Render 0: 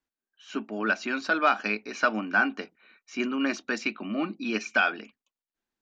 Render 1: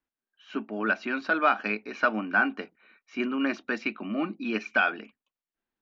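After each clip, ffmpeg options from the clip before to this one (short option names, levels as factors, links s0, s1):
-af "lowpass=3100"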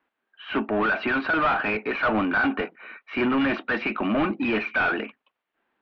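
-filter_complex "[0:a]asplit=2[s0][s1];[s1]highpass=f=720:p=1,volume=31.6,asoftclip=type=tanh:threshold=0.282[s2];[s0][s2]amix=inputs=2:normalize=0,lowpass=f=1500:p=1,volume=0.501,lowpass=f=3400:w=0.5412,lowpass=f=3400:w=1.3066,volume=0.75"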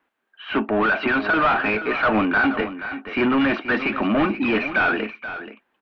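-af "aecho=1:1:479:0.251,volume=1.5"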